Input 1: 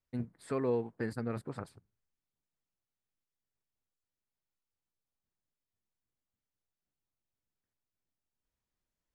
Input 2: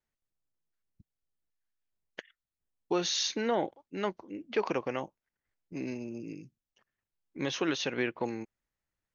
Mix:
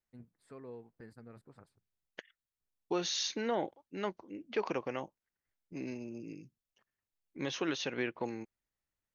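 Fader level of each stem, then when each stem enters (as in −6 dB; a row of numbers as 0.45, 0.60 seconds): −16.5, −4.0 decibels; 0.00, 0.00 seconds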